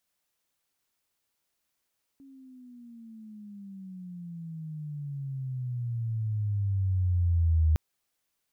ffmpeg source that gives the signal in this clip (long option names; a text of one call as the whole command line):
ffmpeg -f lavfi -i "aevalsrc='pow(10,(-19+29.5*(t/5.56-1))/20)*sin(2*PI*276*5.56/(-22*log(2)/12)*(exp(-22*log(2)/12*t/5.56)-1))':duration=5.56:sample_rate=44100" out.wav